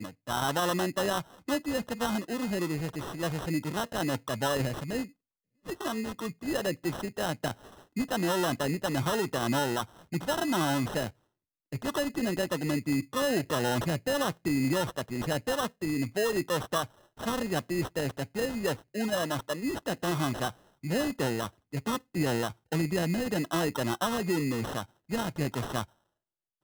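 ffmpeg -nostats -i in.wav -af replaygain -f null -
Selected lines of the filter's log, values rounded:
track_gain = +12.0 dB
track_peak = 0.100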